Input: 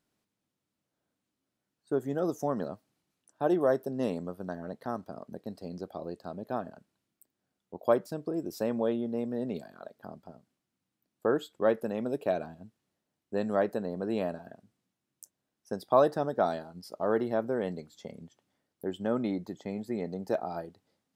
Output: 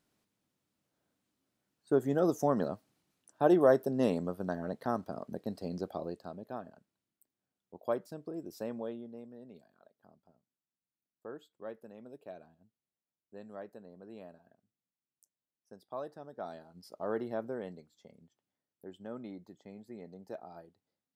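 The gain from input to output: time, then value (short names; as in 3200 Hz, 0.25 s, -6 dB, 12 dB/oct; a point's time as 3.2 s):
5.91 s +2 dB
6.54 s -8 dB
8.68 s -8 dB
9.41 s -18 dB
16.24 s -18 dB
16.85 s -7 dB
17.47 s -7 dB
17.95 s -13.5 dB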